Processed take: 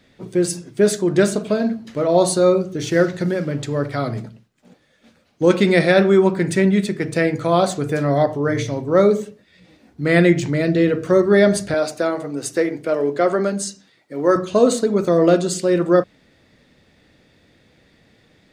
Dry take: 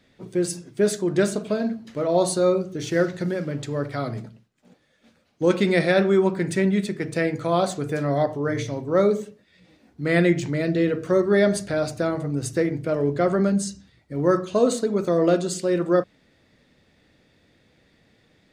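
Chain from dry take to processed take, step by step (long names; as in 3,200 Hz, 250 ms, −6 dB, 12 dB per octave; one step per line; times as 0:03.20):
0:11.74–0:14.36: high-pass filter 320 Hz 12 dB per octave
level +5 dB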